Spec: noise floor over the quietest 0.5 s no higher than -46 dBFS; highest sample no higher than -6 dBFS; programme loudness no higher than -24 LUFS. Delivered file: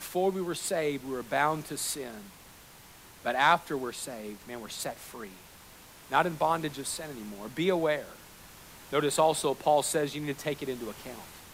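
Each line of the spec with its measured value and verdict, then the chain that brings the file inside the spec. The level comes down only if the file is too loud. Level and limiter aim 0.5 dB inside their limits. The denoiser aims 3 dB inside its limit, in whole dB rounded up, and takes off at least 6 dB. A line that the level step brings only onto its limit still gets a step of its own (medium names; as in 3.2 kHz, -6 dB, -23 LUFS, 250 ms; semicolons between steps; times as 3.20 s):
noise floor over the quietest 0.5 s -52 dBFS: pass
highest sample -9.5 dBFS: pass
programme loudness -30.0 LUFS: pass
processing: none needed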